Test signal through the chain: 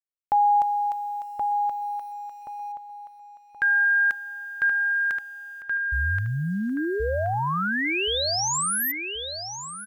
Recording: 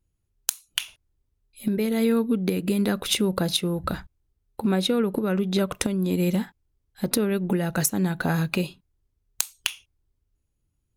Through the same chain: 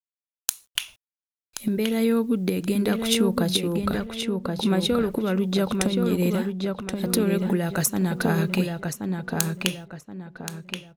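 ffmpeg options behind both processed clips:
-filter_complex "[0:a]acrusher=bits=9:mix=0:aa=0.000001,asplit=2[a][b];[b]adelay=1076,lowpass=f=3.5k:p=1,volume=-4dB,asplit=2[c][d];[d]adelay=1076,lowpass=f=3.5k:p=1,volume=0.34,asplit=2[e][f];[f]adelay=1076,lowpass=f=3.5k:p=1,volume=0.34,asplit=2[g][h];[h]adelay=1076,lowpass=f=3.5k:p=1,volume=0.34[i];[a][c][e][g][i]amix=inputs=5:normalize=0"

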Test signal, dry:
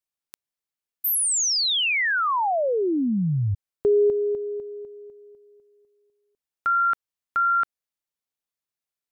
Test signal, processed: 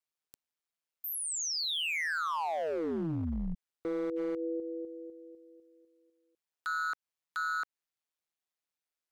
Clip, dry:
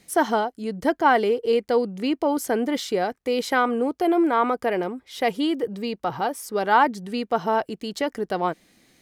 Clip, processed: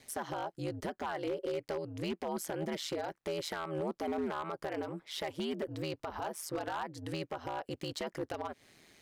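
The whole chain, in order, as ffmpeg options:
-af "lowshelf=f=240:g=-8.5,acompressor=threshold=-29dB:ratio=20:attack=0.55:release=292:knee=6:detection=peak,highshelf=f=7.5k:g=-6,aeval=exprs='val(0)*sin(2*PI*80*n/s)':c=same,aeval=exprs='0.0299*(abs(mod(val(0)/0.0299+3,4)-2)-1)':c=same,volume=2.5dB"

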